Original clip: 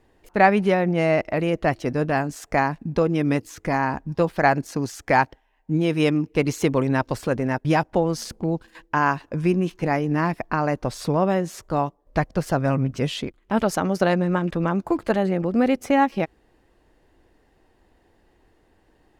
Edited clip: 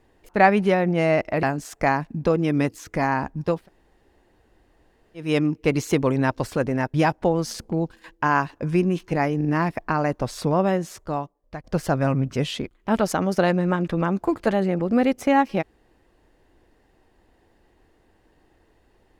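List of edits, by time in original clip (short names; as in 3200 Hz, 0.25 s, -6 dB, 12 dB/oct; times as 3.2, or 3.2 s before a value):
1.43–2.14 cut
4.28–5.97 room tone, crossfade 0.24 s
10.08 stutter 0.04 s, 3 plays
11.39–12.27 fade out, to -17.5 dB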